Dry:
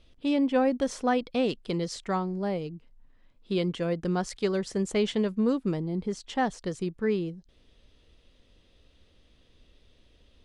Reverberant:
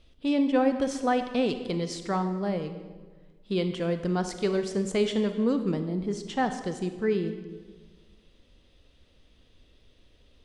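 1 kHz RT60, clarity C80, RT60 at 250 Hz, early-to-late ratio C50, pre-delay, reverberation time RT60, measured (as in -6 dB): 1.3 s, 10.5 dB, 1.7 s, 9.0 dB, 31 ms, 1.4 s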